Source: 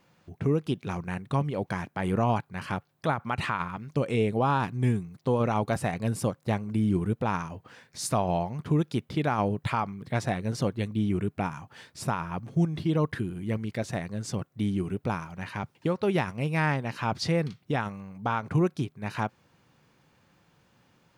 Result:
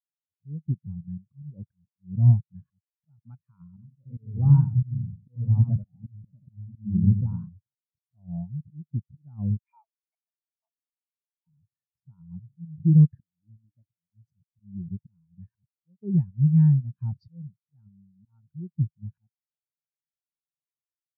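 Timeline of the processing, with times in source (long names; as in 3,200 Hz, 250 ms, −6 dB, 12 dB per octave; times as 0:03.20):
0:03.68–0:07.49: feedback echo with a swinging delay time 90 ms, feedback 40%, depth 181 cents, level −4.5 dB
0:09.58–0:11.47: Chebyshev high-pass with heavy ripple 640 Hz, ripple 9 dB
0:13.22–0:14.10: tuned comb filter 300 Hz, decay 0.18 s, mix 80%
whole clip: bass and treble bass +13 dB, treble +3 dB; volume swells 296 ms; every bin expanded away from the loudest bin 2.5 to 1; level −2.5 dB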